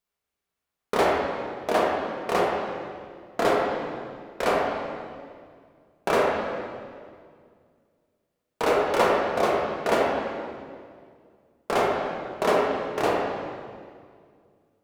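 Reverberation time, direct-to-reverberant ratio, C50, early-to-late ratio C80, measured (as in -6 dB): 2.1 s, -4.0 dB, -0.5 dB, 1.5 dB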